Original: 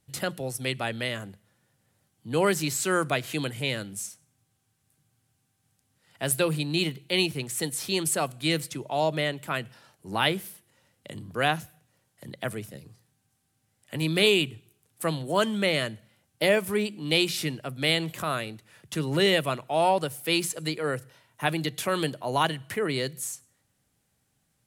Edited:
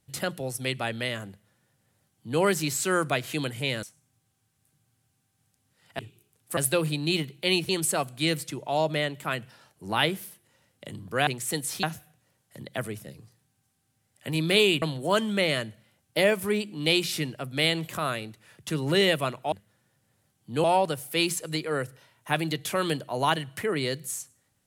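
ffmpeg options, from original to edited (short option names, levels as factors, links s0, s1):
-filter_complex "[0:a]asplit=10[s0][s1][s2][s3][s4][s5][s6][s7][s8][s9];[s0]atrim=end=3.832[s10];[s1]atrim=start=4.078:end=6.242[s11];[s2]atrim=start=14.488:end=15.072[s12];[s3]atrim=start=6.238:end=7.362[s13];[s4]atrim=start=7.918:end=11.502[s14];[s5]atrim=start=7.358:end=7.922[s15];[s6]atrim=start=11.498:end=14.492[s16];[s7]atrim=start=15.068:end=19.772[s17];[s8]atrim=start=1.288:end=2.412[s18];[s9]atrim=start=19.768[s19];[s10][s11]acrossfade=d=0.004:c1=hsin:c2=hsin[s20];[s20][s12]acrossfade=d=0.004:c1=hsin:c2=hsin[s21];[s21][s13]acrossfade=d=0.004:c1=hsin:c2=hsin[s22];[s22][s14]acrossfade=d=0.004:c1=hsin:c2=hsin[s23];[s23][s15]acrossfade=d=0.004:c1=hsin:c2=hsin[s24];[s24][s16]acrossfade=d=0.004:c1=hsin:c2=hsin[s25];[s25][s17]acrossfade=d=0.004:c1=hsin:c2=hsin[s26];[s26][s18]acrossfade=d=0.004:c1=hsin:c2=hsin[s27];[s27][s19]acrossfade=d=0.004:c1=hsin:c2=hsin"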